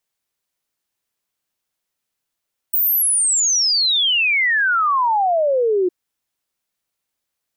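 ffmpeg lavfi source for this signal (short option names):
-f lavfi -i "aevalsrc='0.2*clip(min(t,3.16-t)/0.01,0,1)*sin(2*PI*16000*3.16/log(350/16000)*(exp(log(350/16000)*t/3.16)-1))':d=3.16:s=44100"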